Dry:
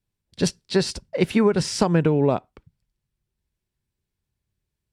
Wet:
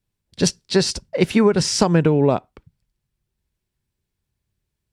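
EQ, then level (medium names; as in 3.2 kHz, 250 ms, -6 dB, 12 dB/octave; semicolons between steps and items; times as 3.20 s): dynamic bell 6.1 kHz, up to +5 dB, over -42 dBFS, Q 1.4; +3.0 dB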